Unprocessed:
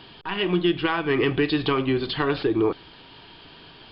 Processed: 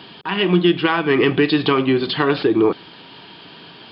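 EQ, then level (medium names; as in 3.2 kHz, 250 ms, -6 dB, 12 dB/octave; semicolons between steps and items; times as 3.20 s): high-pass 140 Hz 12 dB/octave; peaking EQ 190 Hz +4.5 dB 0.47 oct; +6.0 dB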